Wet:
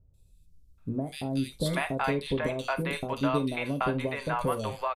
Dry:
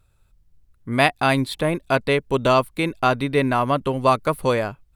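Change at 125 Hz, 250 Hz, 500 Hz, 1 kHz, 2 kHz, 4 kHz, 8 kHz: −7.5, −6.5, −10.5, −11.0, −10.0, −9.5, −6.0 decibels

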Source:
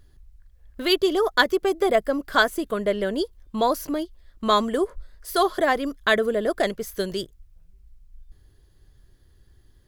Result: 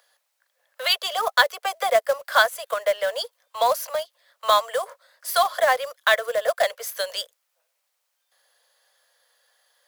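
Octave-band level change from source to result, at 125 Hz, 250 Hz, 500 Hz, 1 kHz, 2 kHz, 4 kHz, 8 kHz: can't be measured, below −30 dB, −1.0 dB, +2.5 dB, +2.0 dB, +3.0 dB, +5.5 dB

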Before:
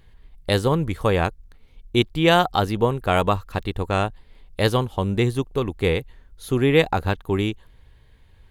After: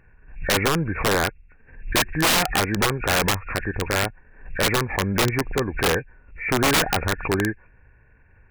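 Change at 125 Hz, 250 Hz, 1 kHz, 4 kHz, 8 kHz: −3.5, −2.5, −1.0, +3.5, +15.0 decibels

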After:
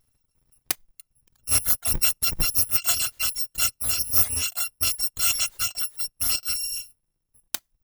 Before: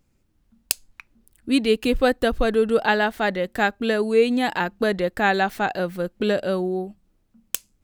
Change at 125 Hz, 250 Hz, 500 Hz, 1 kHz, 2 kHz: −4.0, −23.5, −27.0, −15.5, −10.0 decibels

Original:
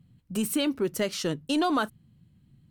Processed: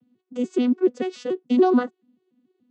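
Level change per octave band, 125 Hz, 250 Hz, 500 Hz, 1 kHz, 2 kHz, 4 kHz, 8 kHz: can't be measured, +6.5 dB, +8.0 dB, +2.5 dB, −2.5 dB, −9.0 dB, below −10 dB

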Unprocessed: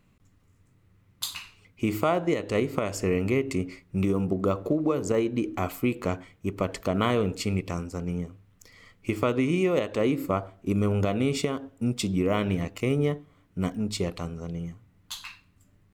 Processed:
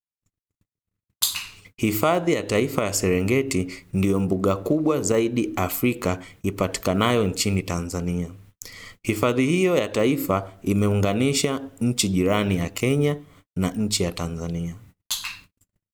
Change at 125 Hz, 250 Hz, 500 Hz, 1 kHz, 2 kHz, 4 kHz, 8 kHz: +4.0, +4.0, +4.0, +4.5, +6.0, +8.5, +12.0 decibels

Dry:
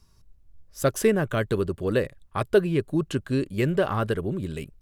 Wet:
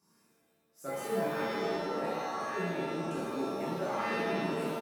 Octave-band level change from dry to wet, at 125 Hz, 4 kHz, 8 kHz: −15.5, −5.0, −11.0 decibels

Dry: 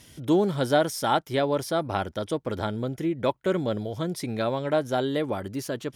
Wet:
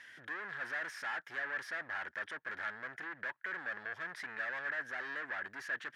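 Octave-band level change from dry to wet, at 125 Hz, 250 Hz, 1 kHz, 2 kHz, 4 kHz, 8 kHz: −32.5 dB, −30.0 dB, −16.0 dB, +1.5 dB, −17.0 dB, below −15 dB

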